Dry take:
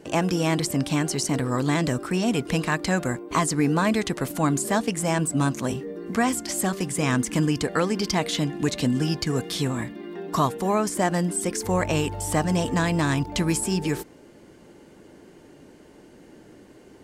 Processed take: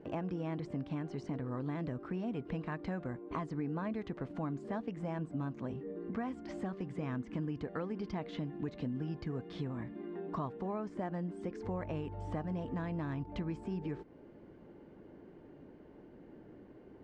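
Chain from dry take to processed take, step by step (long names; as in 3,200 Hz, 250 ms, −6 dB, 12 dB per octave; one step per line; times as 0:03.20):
head-to-tape spacing loss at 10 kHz 43 dB
downward compressor 2.5 to 1, threshold −35 dBFS, peak gain reduction 11 dB
level −4 dB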